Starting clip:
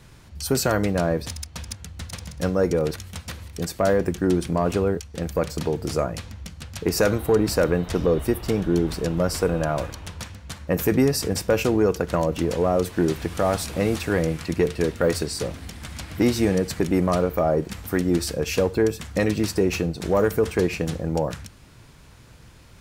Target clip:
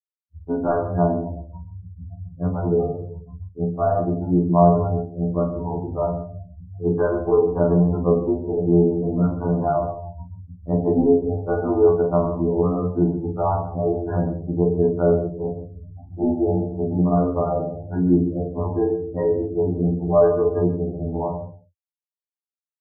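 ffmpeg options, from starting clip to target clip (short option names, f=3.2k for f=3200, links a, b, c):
-filter_complex "[0:a]bandreject=f=510:w=12,asplit=2[a][b];[b]aecho=0:1:40|92|159.6|247.5|361.7:0.631|0.398|0.251|0.158|0.1[c];[a][c]amix=inputs=2:normalize=0,agate=range=-33dB:threshold=-34dB:ratio=3:detection=peak,lowpass=f=910:t=q:w=1.7,afftfilt=real='re*gte(hypot(re,im),0.0708)':imag='im*gte(hypot(re,im),0.0708)':win_size=1024:overlap=0.75,asplit=2[d][e];[e]adelay=33,volume=-7.5dB[f];[d][f]amix=inputs=2:normalize=0,asplit=2[g][h];[h]aecho=0:1:133:0.178[i];[g][i]amix=inputs=2:normalize=0,afftfilt=real='re*2*eq(mod(b,4),0)':imag='im*2*eq(mod(b,4),0)':win_size=2048:overlap=0.75"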